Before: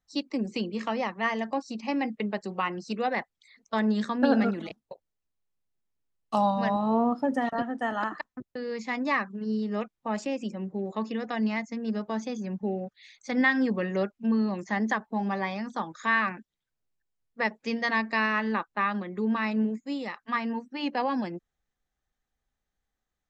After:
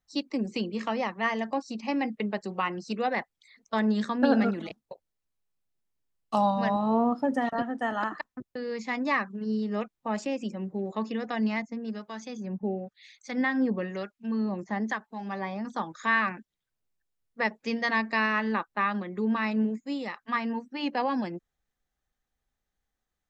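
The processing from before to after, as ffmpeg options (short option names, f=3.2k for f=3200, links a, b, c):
-filter_complex "[0:a]asettb=1/sr,asplit=3[a][b][c];[a]atrim=end=11.624[d];[b]atrim=start=11.62:end=15.65,asetpts=PTS-STARTPTS,afade=t=in:d=0.004:c=qsin,afade=t=out:st=4.026:d=0.004:c=qsin,acrossover=split=1200[e][f];[e]aeval=exprs='val(0)*(1-0.7/2+0.7/2*cos(2*PI*1*n/s))':c=same[g];[f]aeval=exprs='val(0)*(1-0.7/2-0.7/2*cos(2*PI*1*n/s))':c=same[h];[g][h]amix=inputs=2:normalize=0[i];[c]atrim=start=15.646[j];[d][i]acrossfade=d=0.004:c1=hsin:c2=qsin[k];[k][j]acrossfade=d=0.004:c1=qsin:c2=hsin"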